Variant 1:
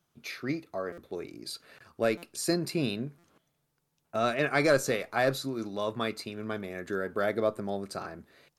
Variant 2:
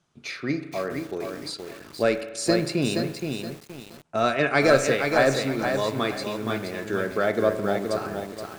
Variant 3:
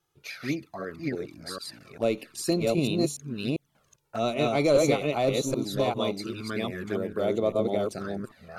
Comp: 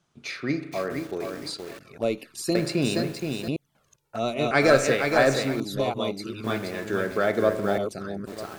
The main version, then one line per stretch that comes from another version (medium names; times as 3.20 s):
2
1.79–2.55 s: from 3
3.48–4.51 s: from 3
5.60–6.44 s: from 3
7.78–8.27 s: from 3
not used: 1